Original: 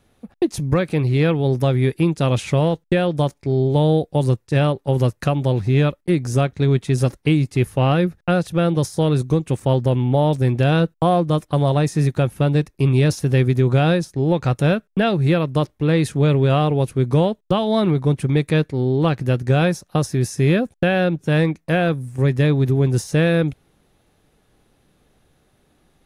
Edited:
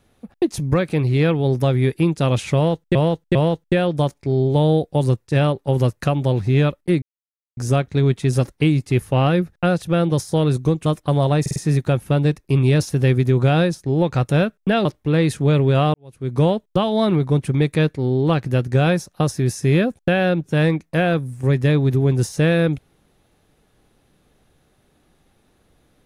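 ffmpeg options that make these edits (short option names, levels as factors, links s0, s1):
-filter_complex "[0:a]asplit=10[s0][s1][s2][s3][s4][s5][s6][s7][s8][s9];[s0]atrim=end=2.952[s10];[s1]atrim=start=2.548:end=2.952[s11];[s2]atrim=start=2.548:end=6.22,asetpts=PTS-STARTPTS,afade=t=out:st=3.668:d=0.004:c=hsin,apad=pad_dur=0.55[s12];[s3]atrim=start=6.22:end=9.512,asetpts=PTS-STARTPTS,afade=t=in:d=0.004:c=hsin[s13];[s4]atrim=start=11.308:end=11.912[s14];[s5]atrim=start=11.858:end=11.912[s15];[s6]atrim=start=11.858:end=11.912[s16];[s7]atrim=start=11.858:end=15.152[s17];[s8]atrim=start=15.598:end=16.69,asetpts=PTS-STARTPTS,afade=t=out:st=1.088:d=0.004:c=hsin[s18];[s9]atrim=start=16.69,asetpts=PTS-STARTPTS,afade=t=in:d=0.47:c=qua[s19];[s10][s11]acrossfade=d=0.004:c1=hsin:c2=hsin[s20];[s12][s13]concat=n=2:v=0:a=1[s21];[s20][s21]acrossfade=d=0.004:c1=hsin:c2=hsin[s22];[s22][s14]acrossfade=d=0.004:c1=hsin:c2=hsin[s23];[s23][s15]acrossfade=d=0.004:c1=hsin:c2=hsin[s24];[s24][s16]acrossfade=d=0.004:c1=hsin:c2=hsin[s25];[s25][s17]acrossfade=d=0.004:c1=hsin:c2=hsin[s26];[s18][s19]concat=n=2:v=0:a=1[s27];[s26][s27]acrossfade=d=0.004:c1=hsin:c2=hsin"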